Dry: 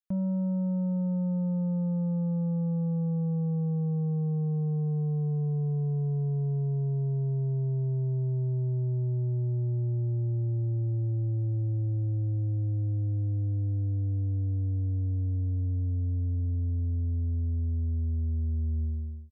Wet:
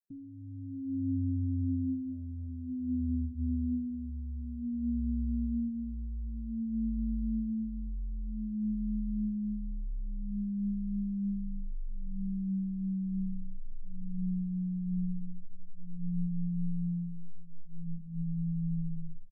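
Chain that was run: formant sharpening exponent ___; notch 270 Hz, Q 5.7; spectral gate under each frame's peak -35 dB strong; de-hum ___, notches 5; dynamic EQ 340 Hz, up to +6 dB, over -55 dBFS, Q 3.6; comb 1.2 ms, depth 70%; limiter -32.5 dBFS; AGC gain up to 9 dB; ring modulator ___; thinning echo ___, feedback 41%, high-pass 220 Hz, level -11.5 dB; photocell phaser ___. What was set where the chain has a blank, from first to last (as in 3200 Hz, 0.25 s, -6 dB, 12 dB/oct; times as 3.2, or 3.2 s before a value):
3, 81.89 Hz, 86 Hz, 0.601 s, 0.53 Hz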